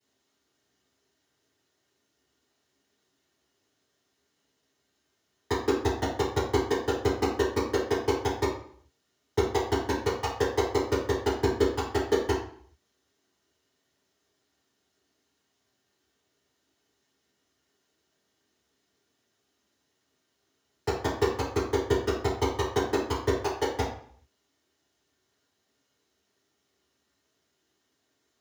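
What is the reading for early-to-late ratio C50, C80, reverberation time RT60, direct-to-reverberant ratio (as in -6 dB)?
3.5 dB, 8.0 dB, 0.55 s, -17.0 dB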